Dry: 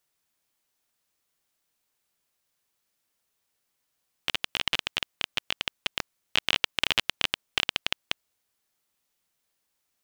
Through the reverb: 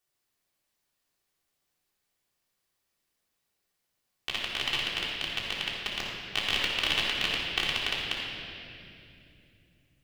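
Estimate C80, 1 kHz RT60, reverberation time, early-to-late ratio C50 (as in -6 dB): 1.0 dB, 2.3 s, 2.8 s, -1.0 dB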